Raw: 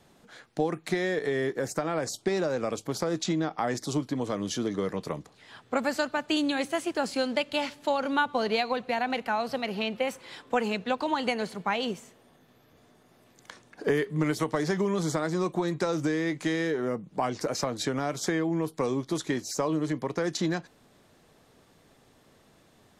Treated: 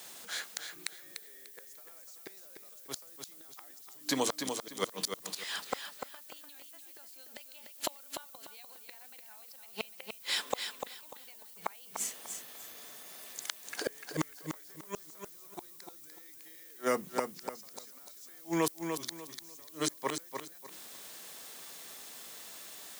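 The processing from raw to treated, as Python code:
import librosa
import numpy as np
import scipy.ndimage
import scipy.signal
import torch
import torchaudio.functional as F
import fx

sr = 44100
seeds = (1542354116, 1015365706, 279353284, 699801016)

p1 = scipy.signal.sosfilt(scipy.signal.butter(4, 130.0, 'highpass', fs=sr, output='sos'), x)
p2 = fx.tilt_eq(p1, sr, slope=4.5)
p3 = fx.hum_notches(p2, sr, base_hz=60, count=6)
p4 = fx.gate_flip(p3, sr, shuts_db=-23.0, range_db=-38)
p5 = fx.dmg_noise_colour(p4, sr, seeds[0], colour='violet', level_db=-60.0)
p6 = p5 + fx.echo_feedback(p5, sr, ms=296, feedback_pct=26, wet_db=-6.5, dry=0)
y = p6 * 10.0 ** (6.0 / 20.0)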